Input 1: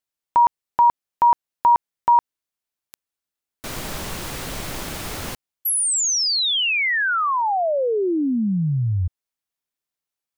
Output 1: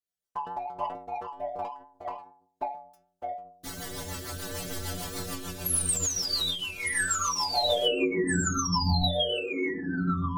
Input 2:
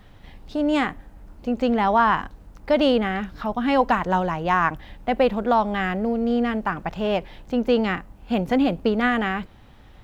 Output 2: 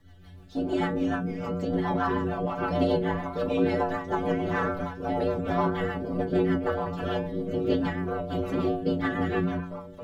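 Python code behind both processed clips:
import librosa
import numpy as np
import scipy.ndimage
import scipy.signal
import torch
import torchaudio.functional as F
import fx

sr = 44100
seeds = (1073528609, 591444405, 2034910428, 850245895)

p1 = fx.graphic_eq_31(x, sr, hz=(160, 1000, 2500), db=(-10, -6, -12))
p2 = fx.whisperise(p1, sr, seeds[0])
p3 = 10.0 ** (-17.0 / 20.0) * np.tanh(p2 / 10.0 ** (-17.0 / 20.0))
p4 = p2 + (p3 * librosa.db_to_amplitude(-3.0))
p5 = fx.echo_pitch(p4, sr, ms=143, semitones=-3, count=2, db_per_echo=-3.0)
p6 = fx.stiff_resonator(p5, sr, f0_hz=87.0, decay_s=0.66, stiffness=0.008)
p7 = fx.rotary(p6, sr, hz=6.7)
p8 = fx.end_taper(p7, sr, db_per_s=100.0)
y = p8 * librosa.db_to_amplitude(5.0)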